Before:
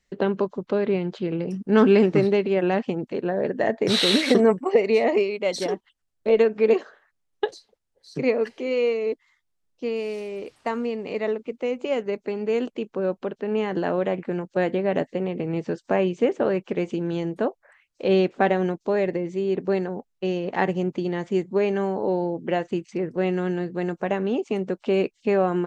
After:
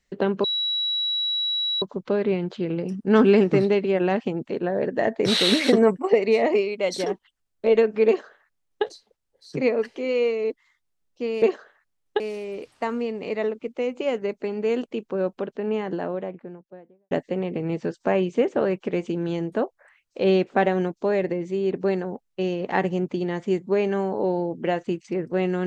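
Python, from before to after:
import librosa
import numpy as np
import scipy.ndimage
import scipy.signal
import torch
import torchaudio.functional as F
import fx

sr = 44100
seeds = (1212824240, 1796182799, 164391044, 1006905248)

y = fx.studio_fade_out(x, sr, start_s=13.16, length_s=1.79)
y = fx.edit(y, sr, fx.insert_tone(at_s=0.44, length_s=1.38, hz=3900.0, db=-22.0),
    fx.duplicate(start_s=6.69, length_s=0.78, to_s=10.04), tone=tone)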